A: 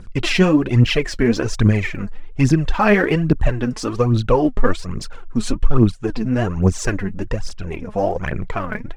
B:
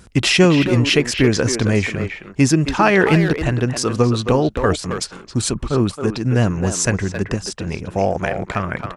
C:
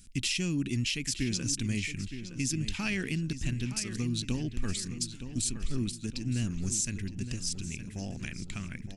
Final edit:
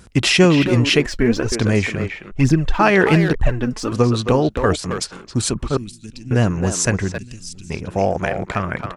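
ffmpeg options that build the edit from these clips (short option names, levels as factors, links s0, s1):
-filter_complex "[0:a]asplit=3[s0][s1][s2];[2:a]asplit=2[s3][s4];[1:a]asplit=6[s5][s6][s7][s8][s9][s10];[s5]atrim=end=1.062[s11];[s0]atrim=start=1.058:end=1.522[s12];[s6]atrim=start=1.518:end=2.32[s13];[s1]atrim=start=2.3:end=2.81[s14];[s7]atrim=start=2.79:end=3.352[s15];[s2]atrim=start=3.348:end=3.922[s16];[s8]atrim=start=3.918:end=5.772[s17];[s3]atrim=start=5.768:end=6.312[s18];[s9]atrim=start=6.308:end=7.182[s19];[s4]atrim=start=7.178:end=7.702[s20];[s10]atrim=start=7.698[s21];[s11][s12]acrossfade=d=0.004:c1=hsin:c2=hsin[s22];[s22][s13]acrossfade=d=0.004:c1=hsin:c2=hsin[s23];[s23][s14]acrossfade=d=0.02:c1=tri:c2=tri[s24];[s24][s15]acrossfade=d=0.02:c1=tri:c2=tri[s25];[s25][s16]acrossfade=d=0.004:c1=hsin:c2=hsin[s26];[s26][s17]acrossfade=d=0.004:c1=hsin:c2=hsin[s27];[s27][s18]acrossfade=d=0.004:c1=hsin:c2=hsin[s28];[s28][s19]acrossfade=d=0.004:c1=hsin:c2=hsin[s29];[s29][s20]acrossfade=d=0.004:c1=hsin:c2=hsin[s30];[s30][s21]acrossfade=d=0.004:c1=hsin:c2=hsin"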